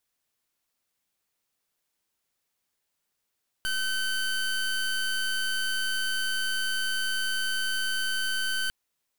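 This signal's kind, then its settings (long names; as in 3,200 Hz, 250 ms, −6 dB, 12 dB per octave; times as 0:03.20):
pulse wave 1,530 Hz, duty 23% −28 dBFS 5.05 s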